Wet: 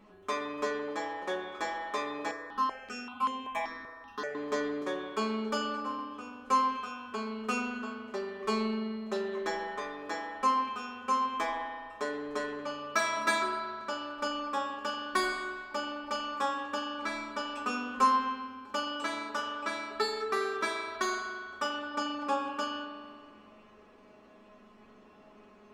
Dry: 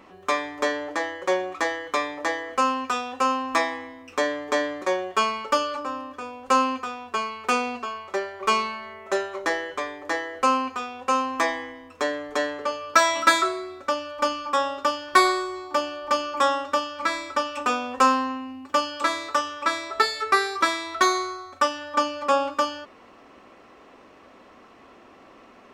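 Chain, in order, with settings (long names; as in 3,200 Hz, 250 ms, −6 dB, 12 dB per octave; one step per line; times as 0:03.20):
low-shelf EQ 290 Hz +8.5 dB
tuned comb filter 210 Hz, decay 0.21 s, harmonics all, mix 90%
spring reverb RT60 1.9 s, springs 41 ms, chirp 25 ms, DRR 2.5 dB
0:02.31–0:04.35: step-sequenced phaser 5.2 Hz 800–4,900 Hz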